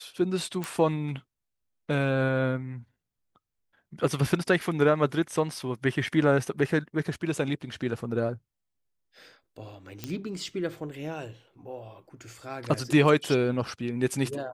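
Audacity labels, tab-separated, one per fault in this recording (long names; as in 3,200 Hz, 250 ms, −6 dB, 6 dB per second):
0.640000	0.640000	click
10.040000	10.040000	click −17 dBFS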